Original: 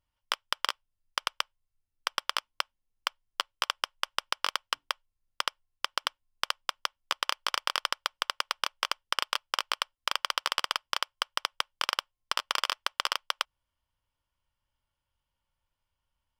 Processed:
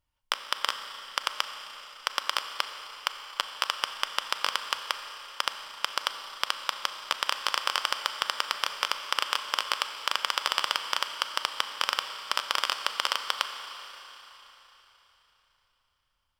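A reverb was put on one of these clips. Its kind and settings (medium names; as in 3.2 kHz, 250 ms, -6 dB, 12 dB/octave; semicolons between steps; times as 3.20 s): Schroeder reverb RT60 3.8 s, combs from 29 ms, DRR 7 dB; trim +1.5 dB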